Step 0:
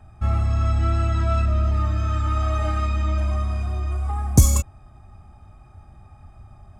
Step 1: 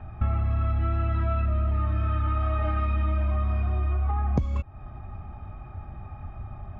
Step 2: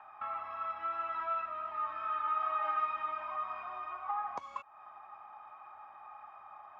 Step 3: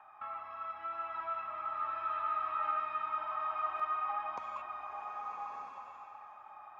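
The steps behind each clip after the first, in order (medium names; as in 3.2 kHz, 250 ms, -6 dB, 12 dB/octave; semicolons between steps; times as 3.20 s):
low-pass 2.9 kHz 24 dB/octave; compression 12:1, threshold -29 dBFS, peak gain reduction 21.5 dB; trim +7 dB
resonant high-pass 1 kHz, resonance Q 3.6; trim -6 dB
buffer glitch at 3.75 s, samples 512, times 3; swelling reverb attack 1230 ms, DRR 0 dB; trim -3.5 dB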